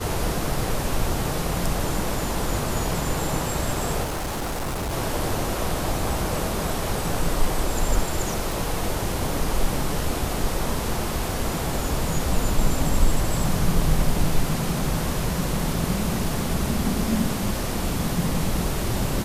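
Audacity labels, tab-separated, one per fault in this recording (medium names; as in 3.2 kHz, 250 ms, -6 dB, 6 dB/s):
4.030000	4.940000	clipped -24.5 dBFS
8.520000	8.520000	pop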